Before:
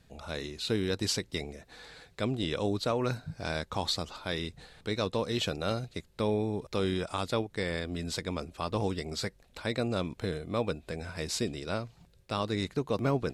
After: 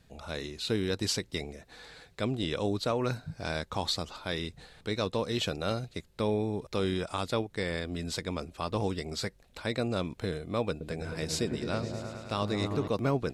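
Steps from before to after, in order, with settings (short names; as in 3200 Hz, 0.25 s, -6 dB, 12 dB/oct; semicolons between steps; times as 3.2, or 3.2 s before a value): 10.7–12.88 repeats that get brighter 0.106 s, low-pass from 400 Hz, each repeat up 1 oct, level -3 dB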